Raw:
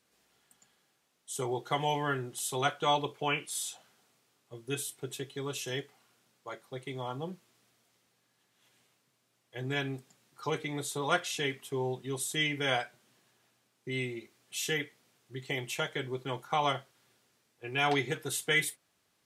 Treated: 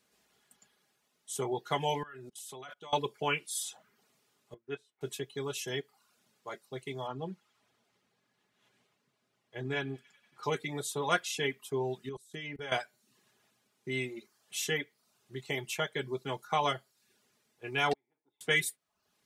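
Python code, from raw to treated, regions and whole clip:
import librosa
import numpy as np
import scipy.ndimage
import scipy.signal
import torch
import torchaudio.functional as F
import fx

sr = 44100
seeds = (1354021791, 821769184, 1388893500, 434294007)

y = fx.chain(x, sr, fx.low_shelf(hz=270.0, db=-3.0),
    fx.level_steps(step_db=23), at=(2.03, 2.93))
y = fx.chain(y, sr, fx.lowpass(hz=1900.0, slope=12),
    fx.low_shelf(hz=270.0, db=-11.0),
    fx.upward_expand(threshold_db=-53.0, expansion=1.5), at=(4.54, 5.01))
y = fx.chain(y, sr, fx.lowpass(hz=3000.0, slope=6),
    fx.echo_wet_highpass(ms=93, feedback_pct=66, hz=1500.0, wet_db=-15.0), at=(7.07, 10.43))
y = fx.chain(y, sr, fx.high_shelf(hz=3300.0, db=-8.5),
    fx.level_steps(step_db=20), at=(12.09, 12.72))
y = fx.chain(y, sr, fx.formant_cascade(vowel='u'),
    fx.differentiator(),
    fx.spectral_comp(ratio=2.0), at=(17.93, 18.41))
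y = fx.dereverb_blind(y, sr, rt60_s=0.51)
y = y + 0.3 * np.pad(y, (int(4.8 * sr / 1000.0), 0))[:len(y)]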